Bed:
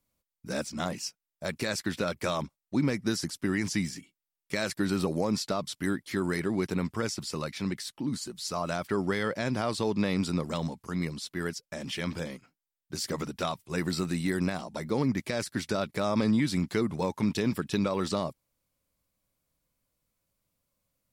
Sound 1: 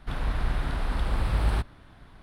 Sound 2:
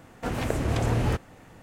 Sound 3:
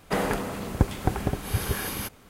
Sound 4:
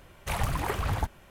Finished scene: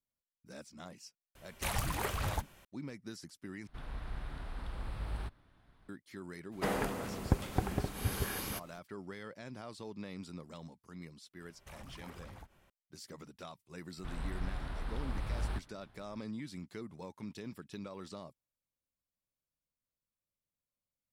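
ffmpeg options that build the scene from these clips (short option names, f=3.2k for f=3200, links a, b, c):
-filter_complex "[4:a]asplit=2[a][b];[1:a]asplit=2[c][d];[0:a]volume=-17dB[e];[a]highshelf=f=2.7k:g=8[f];[b]acompressor=threshold=-35dB:ratio=6:attack=3.2:release=140:knee=1:detection=peak[g];[e]asplit=2[h][i];[h]atrim=end=3.674[j];[c]atrim=end=2.22,asetpts=PTS-STARTPTS,volume=-14.5dB[k];[i]atrim=start=5.886[l];[f]atrim=end=1.3,asetpts=PTS-STARTPTS,volume=-7dB,afade=t=in:d=0.004:c=hsin,afade=t=out:st=1.296:d=0.004:c=hsin,adelay=1350[m];[3:a]atrim=end=2.29,asetpts=PTS-STARTPTS,volume=-7.5dB,afade=t=in:d=0.02,afade=t=out:st=2.27:d=0.02,adelay=6510[n];[g]atrim=end=1.3,asetpts=PTS-STARTPTS,volume=-13dB,afade=t=in:d=0.004:c=hsin,afade=t=out:st=1.296:d=0.004:c=hsin,adelay=11400[o];[d]atrim=end=2.22,asetpts=PTS-STARTPTS,volume=-11.5dB,afade=t=in:d=0.004:c=hsin,afade=t=out:st=2.216:d=0.004:c=hsin,adelay=13970[p];[j][k]acrossfade=d=0.004:c1=hsin:c2=hsin[q];[q][l]acrossfade=d=0.004:c1=hsin:c2=hsin[r];[r][m][n][o][p]amix=inputs=5:normalize=0"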